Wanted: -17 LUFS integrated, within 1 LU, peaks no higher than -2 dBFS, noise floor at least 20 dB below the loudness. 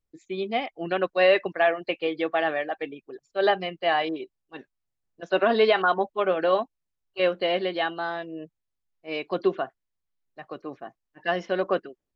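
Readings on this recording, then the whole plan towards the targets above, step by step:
loudness -25.5 LUFS; peak -9.5 dBFS; loudness target -17.0 LUFS
-> gain +8.5 dB; limiter -2 dBFS

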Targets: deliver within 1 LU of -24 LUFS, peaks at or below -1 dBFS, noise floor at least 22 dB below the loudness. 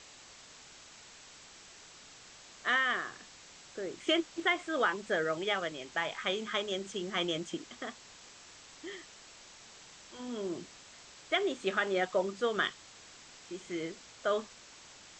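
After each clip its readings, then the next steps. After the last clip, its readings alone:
noise floor -54 dBFS; noise floor target -56 dBFS; loudness -33.5 LUFS; peak -16.0 dBFS; loudness target -24.0 LUFS
-> noise print and reduce 6 dB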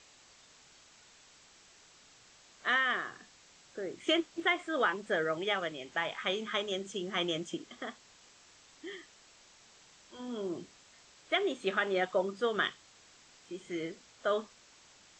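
noise floor -60 dBFS; loudness -33.5 LUFS; peak -16.0 dBFS; loudness target -24.0 LUFS
-> gain +9.5 dB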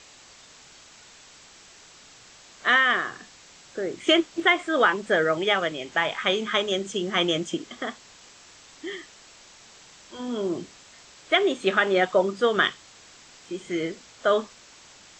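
loudness -24.0 LUFS; peak -6.5 dBFS; noise floor -51 dBFS

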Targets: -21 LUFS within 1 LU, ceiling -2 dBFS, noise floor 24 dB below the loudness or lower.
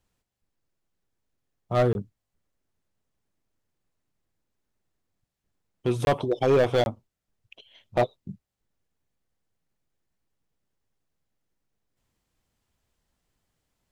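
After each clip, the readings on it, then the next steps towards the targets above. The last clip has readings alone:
clipped 0.6%; flat tops at -15.5 dBFS; dropouts 3; longest dropout 21 ms; loudness -25.5 LUFS; peak -15.5 dBFS; loudness target -21.0 LUFS
-> clip repair -15.5 dBFS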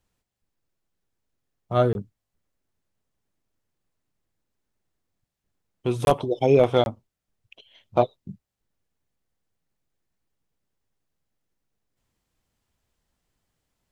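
clipped 0.0%; dropouts 3; longest dropout 21 ms
-> interpolate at 1.93/6.05/6.84, 21 ms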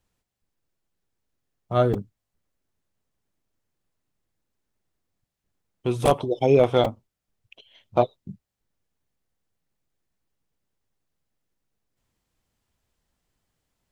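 dropouts 0; loudness -23.0 LUFS; peak -6.5 dBFS; loudness target -21.0 LUFS
-> gain +2 dB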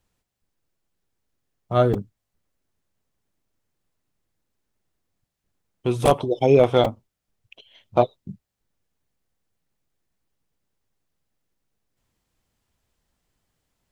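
loudness -21.0 LUFS; peak -4.5 dBFS; noise floor -82 dBFS

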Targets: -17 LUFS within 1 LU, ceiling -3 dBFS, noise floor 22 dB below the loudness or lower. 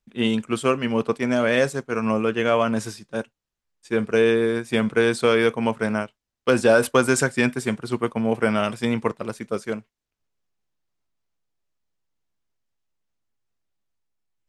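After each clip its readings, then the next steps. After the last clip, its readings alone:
loudness -22.5 LUFS; peak -4.0 dBFS; loudness target -17.0 LUFS
-> gain +5.5 dB; limiter -3 dBFS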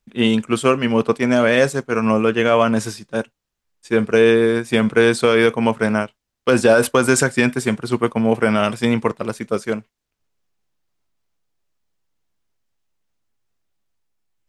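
loudness -17.5 LUFS; peak -3.0 dBFS; noise floor -79 dBFS

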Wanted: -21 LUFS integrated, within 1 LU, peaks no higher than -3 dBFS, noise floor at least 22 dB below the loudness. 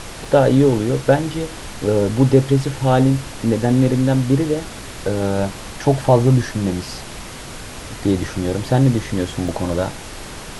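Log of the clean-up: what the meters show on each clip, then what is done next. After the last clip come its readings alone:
dropouts 3; longest dropout 2.5 ms; noise floor -34 dBFS; noise floor target -40 dBFS; loudness -18.0 LUFS; peak -1.0 dBFS; loudness target -21.0 LUFS
-> interpolate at 0.25/4.65/9.48, 2.5 ms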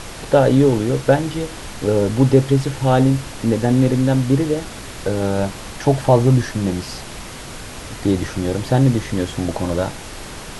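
dropouts 0; noise floor -34 dBFS; noise floor target -40 dBFS
-> noise print and reduce 6 dB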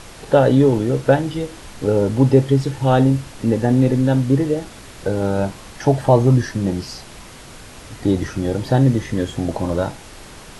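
noise floor -40 dBFS; noise floor target -41 dBFS
-> noise print and reduce 6 dB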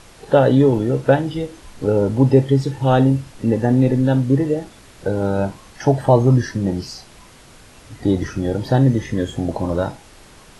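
noise floor -45 dBFS; loudness -18.5 LUFS; peak -1.0 dBFS; loudness target -21.0 LUFS
-> gain -2.5 dB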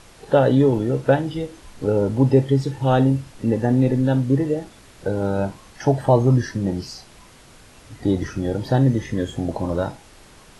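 loudness -21.0 LUFS; peak -3.5 dBFS; noise floor -48 dBFS

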